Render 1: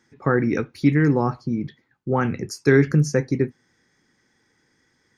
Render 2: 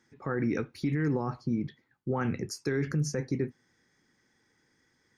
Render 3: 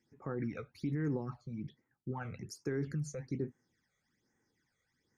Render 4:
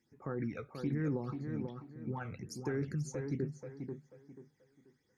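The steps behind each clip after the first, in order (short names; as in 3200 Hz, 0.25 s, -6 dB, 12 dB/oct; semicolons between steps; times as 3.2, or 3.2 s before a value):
limiter -15.5 dBFS, peak gain reduction 11 dB; gain -5 dB
phaser stages 12, 1.2 Hz, lowest notch 280–4300 Hz; gain -7 dB
tape echo 0.486 s, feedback 32%, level -4 dB, low-pass 2100 Hz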